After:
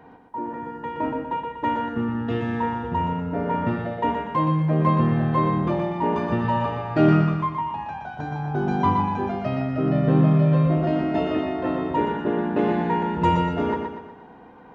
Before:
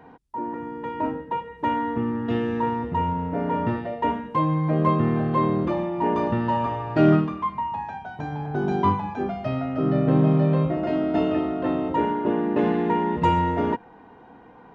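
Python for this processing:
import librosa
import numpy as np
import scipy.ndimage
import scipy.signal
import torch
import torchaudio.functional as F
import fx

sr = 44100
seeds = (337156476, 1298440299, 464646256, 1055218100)

y = fx.echo_feedback(x, sr, ms=121, feedback_pct=46, wet_db=-5)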